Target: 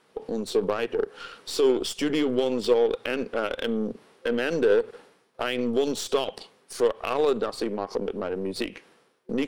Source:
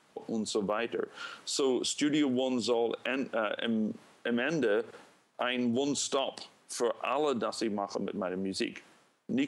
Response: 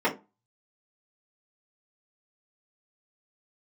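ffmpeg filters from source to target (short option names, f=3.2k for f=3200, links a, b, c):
-af "aeval=exprs='0.126*(cos(1*acos(clip(val(0)/0.126,-1,1)))-cos(1*PI/2))+0.0126*(cos(3*acos(clip(val(0)/0.126,-1,1)))-cos(3*PI/2))+0.00562*(cos(8*acos(clip(val(0)/0.126,-1,1)))-cos(8*PI/2))':c=same,superequalizer=7b=2.24:15b=0.562,volume=4dB"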